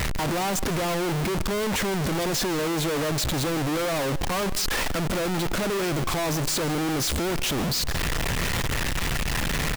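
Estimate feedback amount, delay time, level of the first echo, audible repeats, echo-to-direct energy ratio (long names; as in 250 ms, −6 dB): repeats not evenly spaced, 158 ms, −18.0 dB, 1, −18.0 dB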